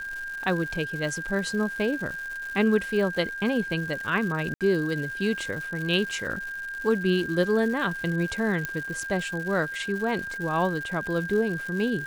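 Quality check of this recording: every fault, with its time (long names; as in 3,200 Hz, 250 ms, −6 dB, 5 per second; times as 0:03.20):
surface crackle 270 per second −34 dBFS
whistle 1,600 Hz −32 dBFS
0:04.54–0:04.61: drop-out 67 ms
0:08.65: click −13 dBFS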